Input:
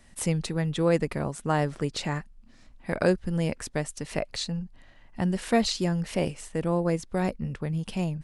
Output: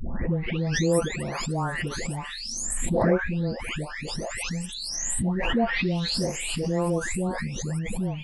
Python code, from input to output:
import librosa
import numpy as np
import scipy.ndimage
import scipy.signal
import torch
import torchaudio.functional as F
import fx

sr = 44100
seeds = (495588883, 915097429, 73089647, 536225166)

y = fx.spec_delay(x, sr, highs='late', ms=755)
y = fx.pre_swell(y, sr, db_per_s=24.0)